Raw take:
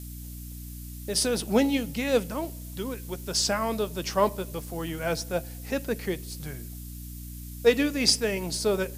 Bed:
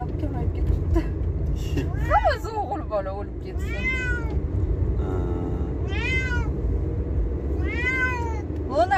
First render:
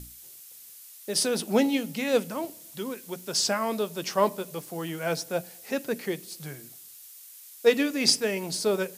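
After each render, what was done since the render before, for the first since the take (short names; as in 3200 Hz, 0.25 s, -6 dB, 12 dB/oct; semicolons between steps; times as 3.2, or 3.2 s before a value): notches 60/120/180/240/300 Hz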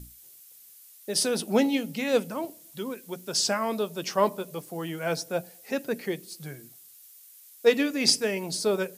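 denoiser 6 dB, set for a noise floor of -48 dBFS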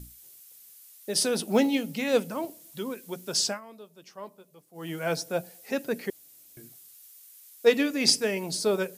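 1.5–2.81 block floating point 7-bit; 3.42–4.92 dip -18.5 dB, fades 0.19 s; 6.1–6.57 room tone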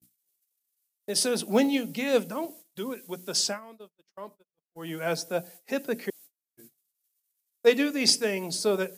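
HPF 150 Hz 24 dB/oct; gate -47 dBFS, range -39 dB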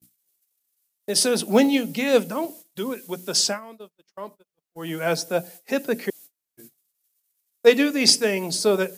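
gain +5.5 dB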